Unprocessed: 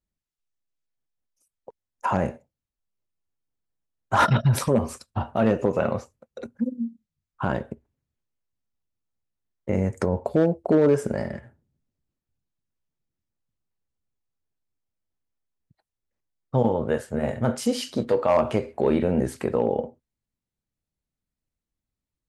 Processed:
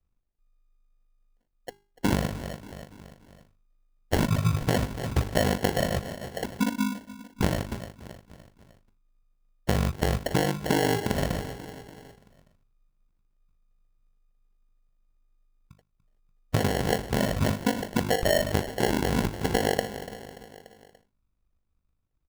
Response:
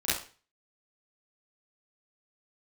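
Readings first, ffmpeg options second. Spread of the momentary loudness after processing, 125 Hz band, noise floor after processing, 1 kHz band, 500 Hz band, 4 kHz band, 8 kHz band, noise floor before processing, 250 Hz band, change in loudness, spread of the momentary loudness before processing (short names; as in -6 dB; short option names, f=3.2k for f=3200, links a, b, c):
19 LU, -0.5 dB, -74 dBFS, -3.5 dB, -5.0 dB, +6.0 dB, +3.5 dB, under -85 dBFS, -2.5 dB, -3.0 dB, 13 LU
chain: -filter_complex "[0:a]equalizer=f=1.7k:w=0.45:g=12.5,aeval=exprs='val(0)*sin(2*PI*25*n/s)':c=same,aemphasis=mode=reproduction:type=riaa,bandreject=f=50:t=h:w=6,bandreject=f=100:t=h:w=6,bandreject=f=150:t=h:w=6,bandreject=f=200:t=h:w=6,bandreject=f=250:t=h:w=6,bandreject=f=300:t=h:w=6,bandreject=f=350:t=h:w=6,bandreject=f=400:t=h:w=6,asplit=2[a][b];[b]adelay=290,lowpass=f=3.1k:p=1,volume=-19dB,asplit=2[c][d];[d]adelay=290,lowpass=f=3.1k:p=1,volume=0.52,asplit=2[e][f];[f]adelay=290,lowpass=f=3.1k:p=1,volume=0.52,asplit=2[g][h];[h]adelay=290,lowpass=f=3.1k:p=1,volume=0.52[i];[c][e][g][i]amix=inputs=4:normalize=0[j];[a][j]amix=inputs=2:normalize=0,acompressor=threshold=-21dB:ratio=6,acrusher=samples=36:mix=1:aa=0.000001"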